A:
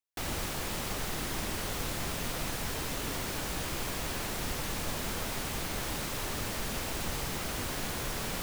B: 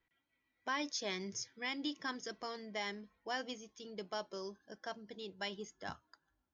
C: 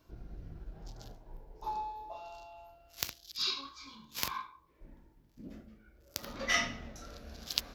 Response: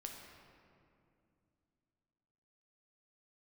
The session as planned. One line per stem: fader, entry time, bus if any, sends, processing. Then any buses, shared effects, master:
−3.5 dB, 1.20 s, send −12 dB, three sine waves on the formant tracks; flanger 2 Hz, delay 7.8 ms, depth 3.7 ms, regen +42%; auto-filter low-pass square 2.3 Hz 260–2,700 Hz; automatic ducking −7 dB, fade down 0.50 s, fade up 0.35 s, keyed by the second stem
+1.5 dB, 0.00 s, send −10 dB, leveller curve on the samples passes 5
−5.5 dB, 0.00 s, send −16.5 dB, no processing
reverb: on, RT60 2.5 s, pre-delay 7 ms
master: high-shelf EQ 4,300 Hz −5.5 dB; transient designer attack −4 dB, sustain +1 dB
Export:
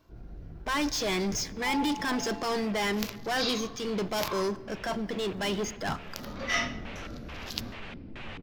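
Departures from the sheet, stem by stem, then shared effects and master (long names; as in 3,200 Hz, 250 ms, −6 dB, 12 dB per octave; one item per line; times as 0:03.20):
stem A: missing three sine waves on the formant tracks
stem C −5.5 dB → +3.0 dB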